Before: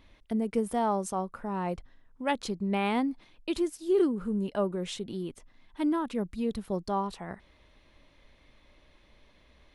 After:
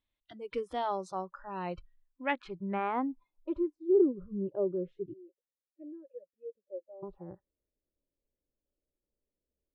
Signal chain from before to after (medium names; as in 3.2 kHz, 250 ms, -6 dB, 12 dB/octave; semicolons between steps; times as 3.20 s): 5.13–7.03 s: vowel filter e; spectral noise reduction 26 dB; low-pass sweep 3.7 kHz -> 450 Hz, 1.72–4.15 s; trim -4.5 dB